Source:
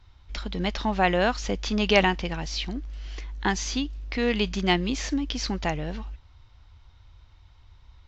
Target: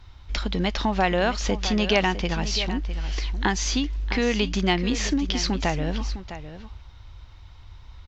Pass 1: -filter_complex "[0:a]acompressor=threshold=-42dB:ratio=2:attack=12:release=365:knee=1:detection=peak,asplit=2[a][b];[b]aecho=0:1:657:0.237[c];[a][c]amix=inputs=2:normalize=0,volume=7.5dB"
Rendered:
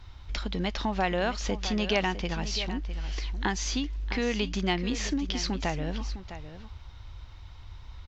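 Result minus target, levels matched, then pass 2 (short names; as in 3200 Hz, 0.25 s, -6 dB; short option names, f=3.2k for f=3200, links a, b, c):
compressor: peak gain reduction +5.5 dB
-filter_complex "[0:a]acompressor=threshold=-31dB:ratio=2:attack=12:release=365:knee=1:detection=peak,asplit=2[a][b];[b]aecho=0:1:657:0.237[c];[a][c]amix=inputs=2:normalize=0,volume=7.5dB"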